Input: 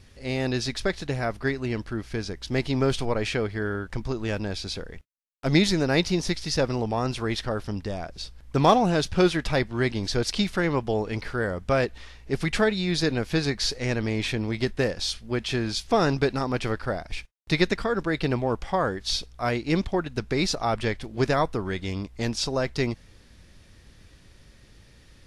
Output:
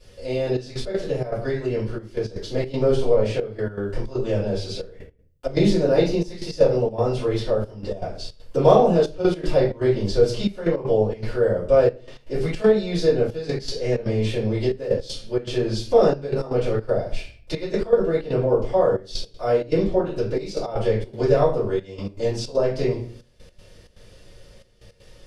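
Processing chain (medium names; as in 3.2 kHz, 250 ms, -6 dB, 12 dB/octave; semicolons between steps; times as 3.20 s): peaking EQ 2.9 kHz +3 dB 0.3 oct; simulated room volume 42 m³, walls mixed, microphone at 2.6 m; trance gate "xxxxxx..x.xxx.x" 159 bpm -12 dB; graphic EQ 125/500/2000 Hz +3/+12/-4 dB; tape noise reduction on one side only encoder only; trim -17 dB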